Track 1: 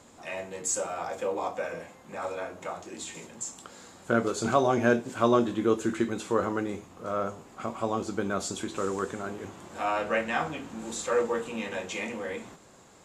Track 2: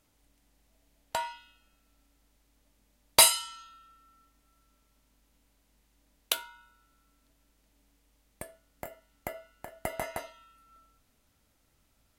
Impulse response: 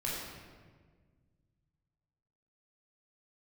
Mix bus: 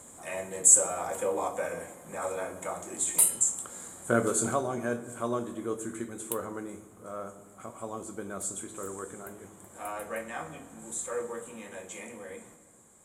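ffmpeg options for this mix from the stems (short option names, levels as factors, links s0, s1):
-filter_complex "[0:a]bandreject=f=2700:w=9.5,volume=0.891,afade=t=out:st=4.31:d=0.33:silence=0.354813,asplit=2[s0][s1];[s1]volume=0.188[s2];[1:a]volume=0.126[s3];[2:a]atrim=start_sample=2205[s4];[s2][s4]afir=irnorm=-1:irlink=0[s5];[s0][s3][s5]amix=inputs=3:normalize=0,highshelf=f=6700:t=q:w=3:g=11"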